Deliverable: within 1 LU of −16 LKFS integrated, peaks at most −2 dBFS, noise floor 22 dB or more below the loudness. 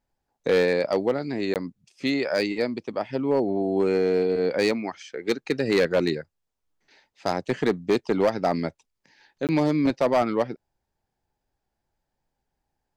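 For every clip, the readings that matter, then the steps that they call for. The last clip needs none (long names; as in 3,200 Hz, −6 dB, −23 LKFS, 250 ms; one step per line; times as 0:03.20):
share of clipped samples 0.8%; peaks flattened at −14.5 dBFS; number of dropouts 2; longest dropout 18 ms; integrated loudness −25.0 LKFS; sample peak −14.5 dBFS; target loudness −16.0 LKFS
→ clipped peaks rebuilt −14.5 dBFS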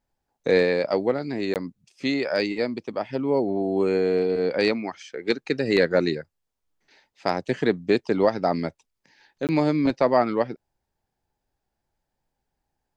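share of clipped samples 0.0%; number of dropouts 2; longest dropout 18 ms
→ repair the gap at 0:01.54/0:09.47, 18 ms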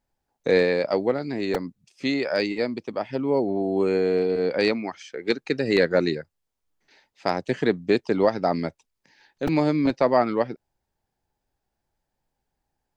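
number of dropouts 0; integrated loudness −24.0 LKFS; sample peak −6.0 dBFS; target loudness −16.0 LKFS
→ level +8 dB
brickwall limiter −2 dBFS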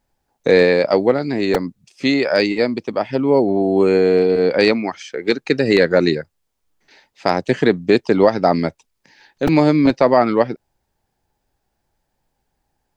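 integrated loudness −16.5 LKFS; sample peak −2.0 dBFS; background noise floor −73 dBFS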